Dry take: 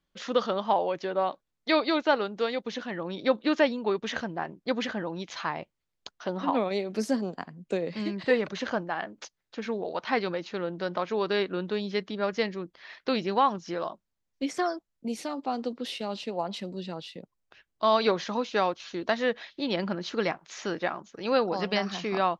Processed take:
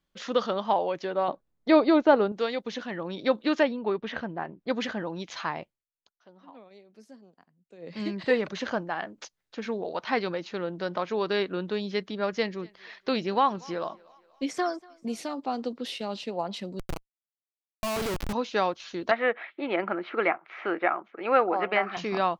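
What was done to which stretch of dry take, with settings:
1.28–2.32 tilt shelf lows +8 dB, about 1400 Hz
3.63–4.7 air absorption 240 m
5.58–8.04 dip -23 dB, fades 0.27 s
12.35–15.29 thinning echo 0.239 s, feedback 53%, high-pass 300 Hz, level -24 dB
16.79–18.33 Schmitt trigger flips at -28.5 dBFS
19.11–21.97 speaker cabinet 330–2600 Hz, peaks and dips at 340 Hz +7 dB, 730 Hz +7 dB, 1300 Hz +9 dB, 2200 Hz +9 dB

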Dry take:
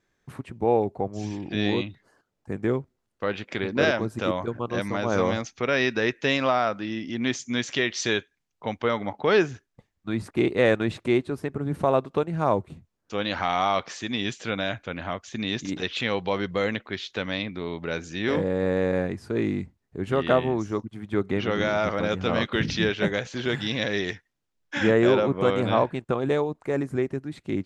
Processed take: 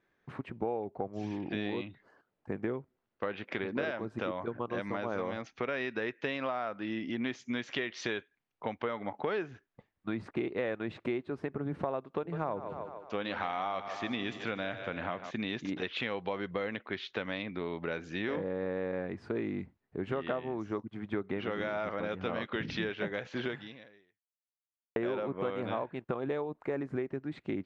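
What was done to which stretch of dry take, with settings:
12.17–15.31 split-band echo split 330 Hz, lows 81 ms, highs 0.15 s, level -12 dB
23.45–24.96 fade out exponential
whole clip: LPF 2800 Hz 12 dB/oct; low shelf 120 Hz -11.5 dB; compressor 6:1, threshold -31 dBFS

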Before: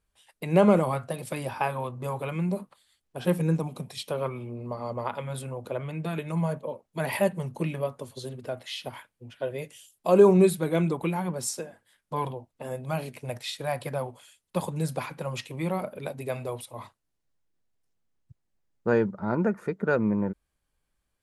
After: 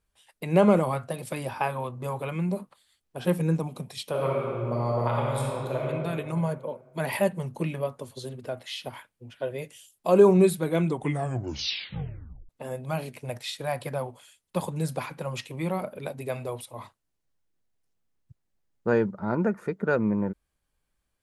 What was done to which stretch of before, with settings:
4.09–5.85 reverb throw, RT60 2.3 s, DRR -3.5 dB
10.87 tape stop 1.62 s

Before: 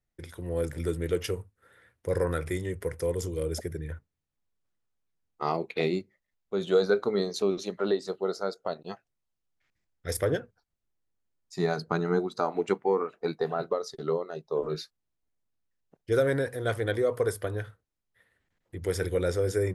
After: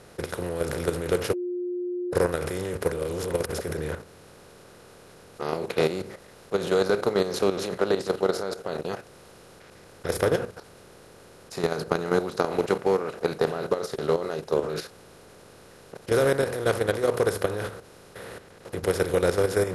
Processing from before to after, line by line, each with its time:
1.33–2.13 bleep 356 Hz -23.5 dBFS
2.92–3.53 reverse
whole clip: per-bin compression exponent 0.4; level quantiser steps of 10 dB

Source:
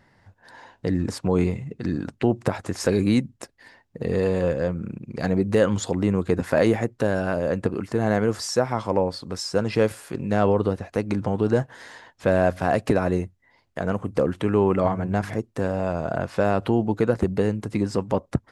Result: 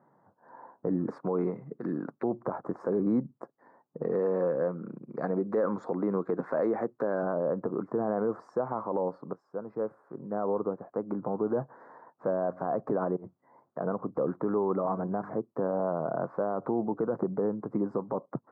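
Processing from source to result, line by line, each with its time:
1.06–2.24 weighting filter D
4.02–7.23 weighting filter D
9.33–12.33 fade in, from -14 dB
13.16–13.79 negative-ratio compressor -33 dBFS, ratio -0.5
whole clip: elliptic band-pass 140–1200 Hz, stop band 40 dB; low shelf 200 Hz -9.5 dB; limiter -19.5 dBFS

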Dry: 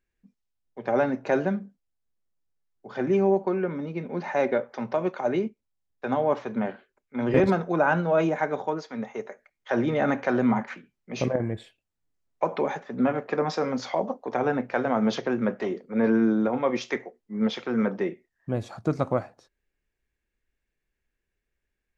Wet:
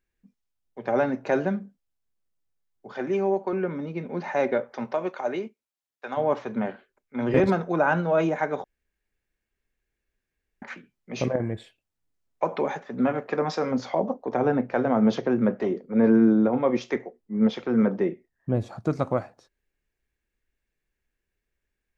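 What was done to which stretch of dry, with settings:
2.92–3.53 HPF 350 Hz 6 dB/oct
4.84–6.16 HPF 280 Hz -> 1100 Hz 6 dB/oct
8.64–10.62 room tone
13.71–18.8 tilt shelf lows +4.5 dB, about 860 Hz

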